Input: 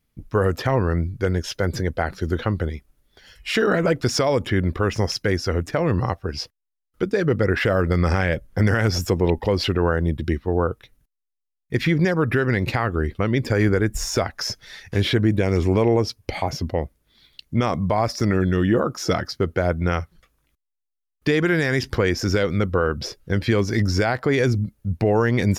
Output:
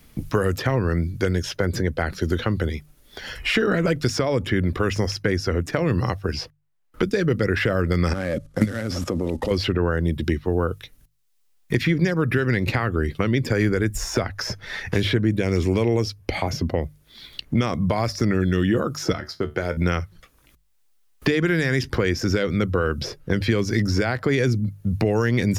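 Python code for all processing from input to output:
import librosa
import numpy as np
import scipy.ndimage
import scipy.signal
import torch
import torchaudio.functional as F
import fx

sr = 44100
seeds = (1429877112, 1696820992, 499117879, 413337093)

y = fx.chain(x, sr, fx.cvsd(bps=64000),
    fx.level_steps(step_db=16),
    fx.small_body(hz=(260.0, 550.0, 1200.0), ring_ms=25, db=11), at=(8.13, 9.51))
y = fx.chain(y, sr, fx.low_shelf(hz=130.0, db=-10.0),
    fx.comb_fb(f0_hz=74.0, decay_s=0.21, harmonics='all', damping=0.0, mix_pct=70), at=(19.12, 19.77))
y = fx.hum_notches(y, sr, base_hz=50, count=3)
y = fx.dynamic_eq(y, sr, hz=810.0, q=1.2, threshold_db=-35.0, ratio=4.0, max_db=-6)
y = fx.band_squash(y, sr, depth_pct=70)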